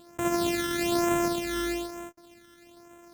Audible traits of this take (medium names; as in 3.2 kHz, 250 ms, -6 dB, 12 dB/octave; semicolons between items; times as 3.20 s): a buzz of ramps at a fixed pitch in blocks of 128 samples; phasing stages 12, 1.1 Hz, lowest notch 770–4500 Hz